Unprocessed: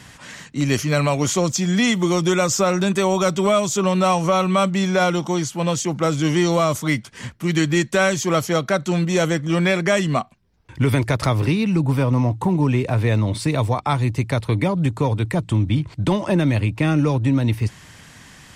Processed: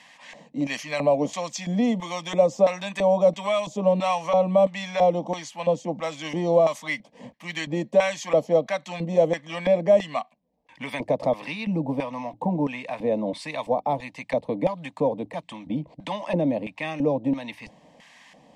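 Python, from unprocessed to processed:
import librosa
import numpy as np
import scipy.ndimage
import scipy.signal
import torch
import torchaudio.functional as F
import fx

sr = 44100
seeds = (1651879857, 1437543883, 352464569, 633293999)

y = fx.filter_lfo_bandpass(x, sr, shape='square', hz=1.5, low_hz=480.0, high_hz=1600.0, q=1.6)
y = fx.fixed_phaser(y, sr, hz=380.0, stages=6)
y = F.gain(torch.from_numpy(y), 6.0).numpy()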